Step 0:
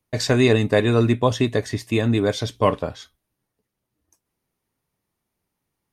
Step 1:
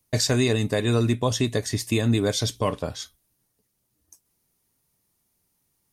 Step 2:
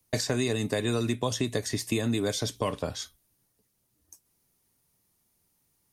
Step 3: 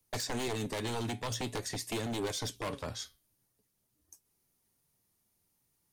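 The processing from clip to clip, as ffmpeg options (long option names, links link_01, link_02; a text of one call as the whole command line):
ffmpeg -i in.wav -af "bass=frequency=250:gain=3,treble=frequency=4000:gain=12,alimiter=limit=-11.5dB:level=0:latency=1:release=416" out.wav
ffmpeg -i in.wav -filter_complex "[0:a]acrossover=split=170|2100|5600[link_01][link_02][link_03][link_04];[link_01]acompressor=threshold=-37dB:ratio=4[link_05];[link_02]acompressor=threshold=-26dB:ratio=4[link_06];[link_03]acompressor=threshold=-38dB:ratio=4[link_07];[link_04]acompressor=threshold=-36dB:ratio=4[link_08];[link_05][link_06][link_07][link_08]amix=inputs=4:normalize=0" out.wav
ffmpeg -i in.wav -af "aeval=exprs='0.0596*(abs(mod(val(0)/0.0596+3,4)-2)-1)':channel_layout=same,flanger=delay=2.3:depth=7.5:regen=81:speed=0.47:shape=sinusoidal" out.wav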